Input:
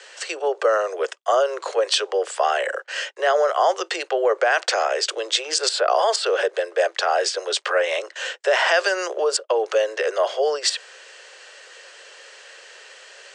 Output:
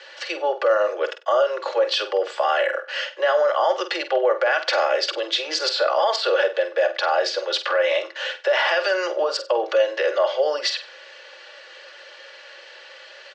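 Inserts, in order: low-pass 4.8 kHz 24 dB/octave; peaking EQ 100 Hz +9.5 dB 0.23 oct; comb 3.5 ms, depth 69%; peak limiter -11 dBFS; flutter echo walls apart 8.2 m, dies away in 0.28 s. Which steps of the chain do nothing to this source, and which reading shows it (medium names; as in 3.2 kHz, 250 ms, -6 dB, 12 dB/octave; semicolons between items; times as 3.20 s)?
peaking EQ 100 Hz: input has nothing below 300 Hz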